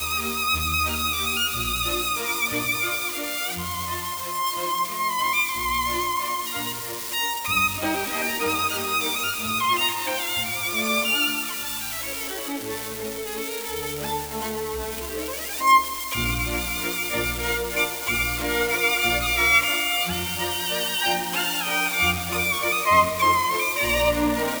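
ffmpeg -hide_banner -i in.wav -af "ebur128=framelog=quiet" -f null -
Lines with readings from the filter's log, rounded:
Integrated loudness:
  I:         -22.9 LUFS
  Threshold: -32.9 LUFS
Loudness range:
  LRA:         4.1 LU
  Threshold: -43.1 LUFS
  LRA low:   -25.0 LUFS
  LRA high:  -21.0 LUFS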